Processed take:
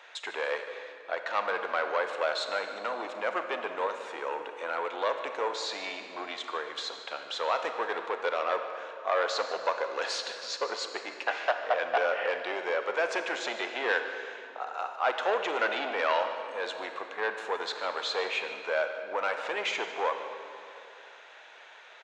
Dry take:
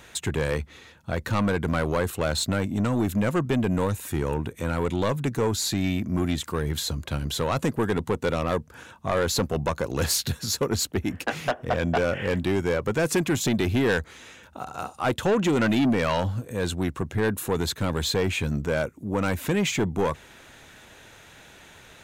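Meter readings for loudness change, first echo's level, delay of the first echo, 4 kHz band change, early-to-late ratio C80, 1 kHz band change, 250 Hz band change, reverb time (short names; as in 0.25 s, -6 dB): -5.5 dB, -16.5 dB, 0.15 s, -4.0 dB, 7.5 dB, +0.5 dB, -21.5 dB, 2.7 s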